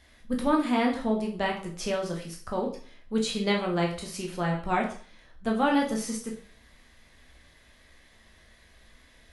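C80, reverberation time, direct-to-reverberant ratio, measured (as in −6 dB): 12.5 dB, 0.45 s, −1.0 dB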